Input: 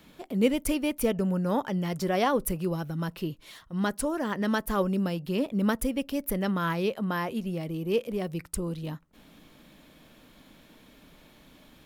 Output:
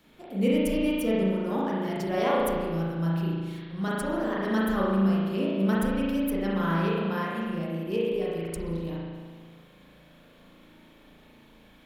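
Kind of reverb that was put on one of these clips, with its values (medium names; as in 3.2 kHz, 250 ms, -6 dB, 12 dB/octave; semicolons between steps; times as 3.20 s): spring tank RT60 1.7 s, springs 36 ms, chirp 30 ms, DRR -6.5 dB; trim -6.5 dB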